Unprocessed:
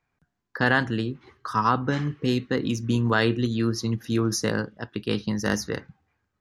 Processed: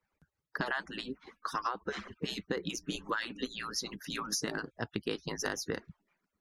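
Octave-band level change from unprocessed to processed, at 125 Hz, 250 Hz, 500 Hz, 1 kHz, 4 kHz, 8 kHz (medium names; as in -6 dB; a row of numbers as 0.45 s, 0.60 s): -19.5 dB, -15.0 dB, -11.5 dB, -10.5 dB, -5.5 dB, -4.0 dB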